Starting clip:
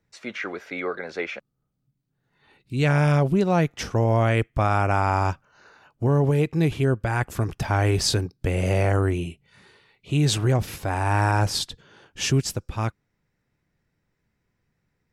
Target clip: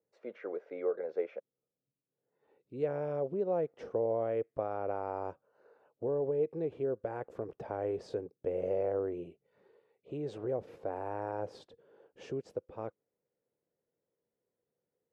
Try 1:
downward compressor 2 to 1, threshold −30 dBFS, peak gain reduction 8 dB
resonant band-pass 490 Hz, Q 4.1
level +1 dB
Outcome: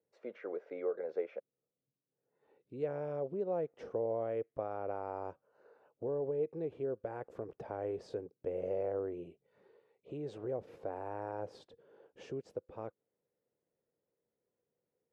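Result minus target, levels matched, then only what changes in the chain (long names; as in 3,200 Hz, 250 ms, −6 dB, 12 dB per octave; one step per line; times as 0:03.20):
downward compressor: peak gain reduction +3.5 dB
change: downward compressor 2 to 1, threshold −23 dBFS, peak gain reduction 4.5 dB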